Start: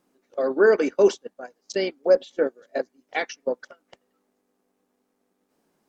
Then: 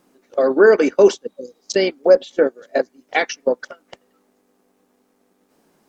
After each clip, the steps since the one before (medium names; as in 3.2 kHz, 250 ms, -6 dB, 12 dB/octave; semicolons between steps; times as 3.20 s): spectral replace 1.28–1.62 s, 570–3900 Hz after; in parallel at +1 dB: compression, threshold -26 dBFS, peak gain reduction 14 dB; on the sum: trim +3.5 dB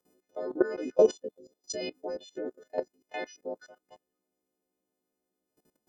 partials quantised in pitch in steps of 3 st; harmonic-percussive split harmonic -17 dB; level held to a coarse grid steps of 17 dB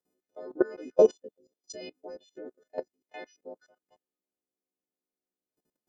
upward expansion 1.5:1, over -43 dBFS; trim +2 dB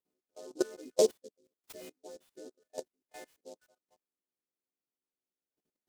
delay time shaken by noise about 5.6 kHz, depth 0.064 ms; trim -6 dB